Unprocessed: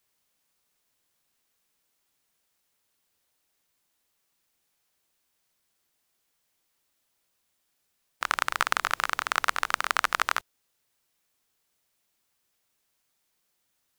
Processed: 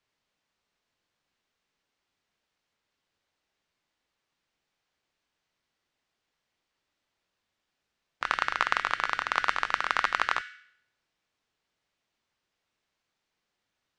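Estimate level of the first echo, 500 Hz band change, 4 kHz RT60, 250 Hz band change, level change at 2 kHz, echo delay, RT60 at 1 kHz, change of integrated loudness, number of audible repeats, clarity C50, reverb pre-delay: no echo, -0.5 dB, 0.65 s, 0.0 dB, -0.5 dB, no echo, 0.70 s, -1.0 dB, no echo, 13.5 dB, 4 ms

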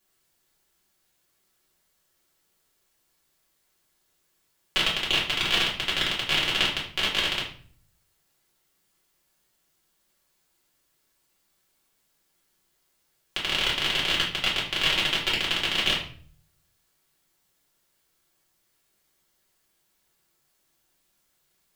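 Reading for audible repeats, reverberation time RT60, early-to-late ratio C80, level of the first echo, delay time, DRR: no echo, 0.45 s, 10.5 dB, no echo, no echo, -7.0 dB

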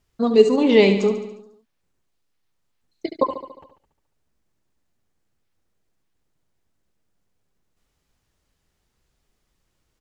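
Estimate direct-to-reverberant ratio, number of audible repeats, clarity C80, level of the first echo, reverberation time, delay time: no reverb, 6, no reverb, -10.0 dB, no reverb, 71 ms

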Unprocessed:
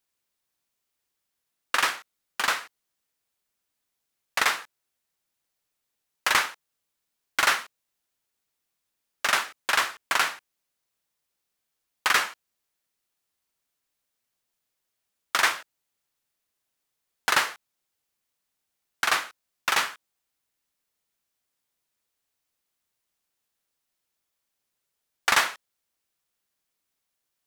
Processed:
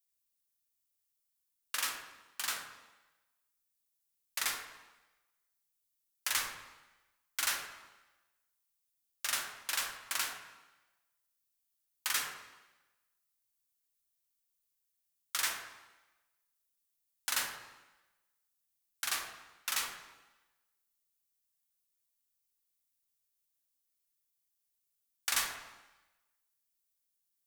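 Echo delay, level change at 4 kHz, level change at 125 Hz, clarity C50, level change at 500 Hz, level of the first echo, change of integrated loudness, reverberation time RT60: no echo, -9.0 dB, no reading, 4.0 dB, -16.5 dB, no echo, -10.0 dB, 1.1 s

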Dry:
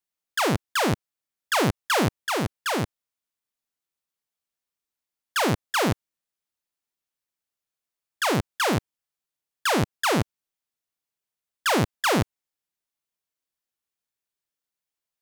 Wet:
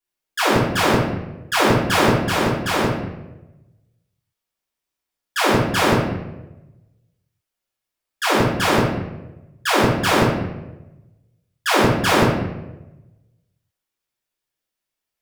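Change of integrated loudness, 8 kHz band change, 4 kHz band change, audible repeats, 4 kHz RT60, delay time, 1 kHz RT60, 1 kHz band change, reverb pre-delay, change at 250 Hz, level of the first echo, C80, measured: +6.0 dB, +3.5 dB, +6.0 dB, no echo, 0.65 s, no echo, 0.90 s, +6.5 dB, 3 ms, +7.5 dB, no echo, 4.0 dB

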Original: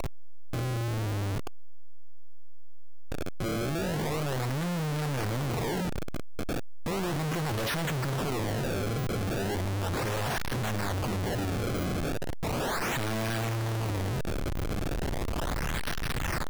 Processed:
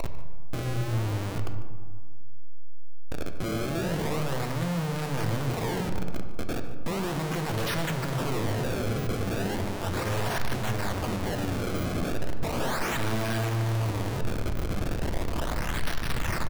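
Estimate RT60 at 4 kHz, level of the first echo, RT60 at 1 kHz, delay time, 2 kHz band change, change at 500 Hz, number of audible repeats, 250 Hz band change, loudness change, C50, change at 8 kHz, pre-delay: 0.80 s, -16.5 dB, 1.8 s, 148 ms, +1.0 dB, +1.0 dB, 1, +1.5 dB, +1.0 dB, 7.5 dB, 0.0 dB, 3 ms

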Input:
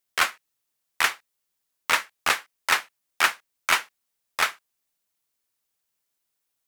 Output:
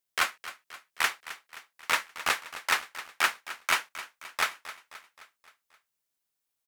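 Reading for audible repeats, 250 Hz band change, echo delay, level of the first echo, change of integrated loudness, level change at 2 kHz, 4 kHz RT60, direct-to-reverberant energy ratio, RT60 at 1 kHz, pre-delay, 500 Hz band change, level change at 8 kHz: 4, -4.5 dB, 263 ms, -14.5 dB, -4.5 dB, -4.5 dB, no reverb, no reverb, no reverb, no reverb, -4.0 dB, -4.5 dB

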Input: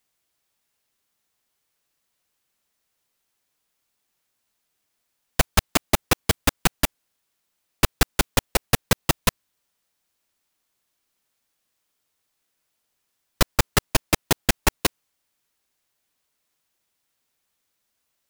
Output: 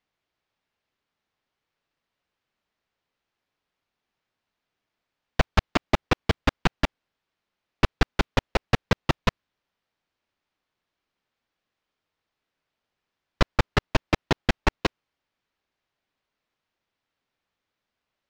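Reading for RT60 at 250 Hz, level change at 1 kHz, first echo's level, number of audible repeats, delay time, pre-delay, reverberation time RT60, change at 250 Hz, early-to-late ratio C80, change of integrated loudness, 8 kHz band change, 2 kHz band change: no reverb, -1.0 dB, no echo, no echo, no echo, no reverb, no reverb, -0.5 dB, no reverb, -3.5 dB, -17.5 dB, -2.0 dB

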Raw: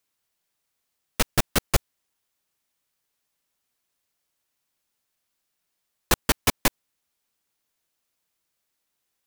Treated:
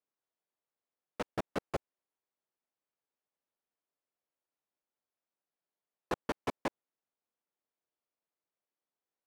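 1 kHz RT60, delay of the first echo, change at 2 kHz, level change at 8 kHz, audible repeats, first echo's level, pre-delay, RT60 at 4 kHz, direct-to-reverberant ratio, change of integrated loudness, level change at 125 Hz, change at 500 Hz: no reverb, no echo, -15.5 dB, -28.5 dB, no echo, no echo, no reverb, no reverb, no reverb, -14.5 dB, -17.0 dB, -7.5 dB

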